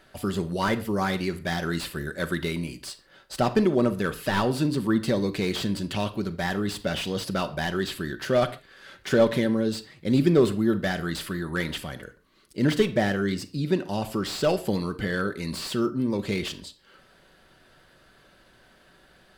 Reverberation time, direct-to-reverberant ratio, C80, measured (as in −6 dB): non-exponential decay, 7.5 dB, 19.5 dB